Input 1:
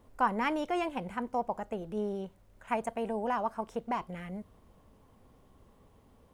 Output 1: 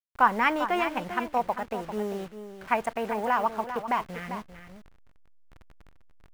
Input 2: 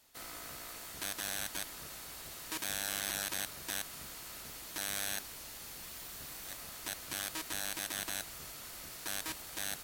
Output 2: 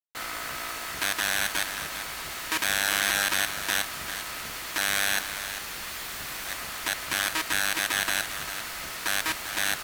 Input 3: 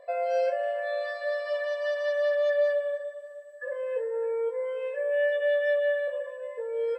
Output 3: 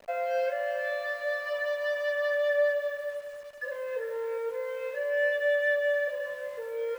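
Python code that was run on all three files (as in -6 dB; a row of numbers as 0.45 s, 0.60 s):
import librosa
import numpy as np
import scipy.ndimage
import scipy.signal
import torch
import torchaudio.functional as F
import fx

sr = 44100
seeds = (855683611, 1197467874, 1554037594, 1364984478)

p1 = fx.delta_hold(x, sr, step_db=-47.0)
p2 = fx.peak_eq(p1, sr, hz=1700.0, db=9.0, octaves=2.3)
p3 = p2 + fx.echo_single(p2, sr, ms=396, db=-10.5, dry=0)
y = p3 * 10.0 ** (-30 / 20.0) / np.sqrt(np.mean(np.square(p3)))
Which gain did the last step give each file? +1.0 dB, +7.0 dB, -5.5 dB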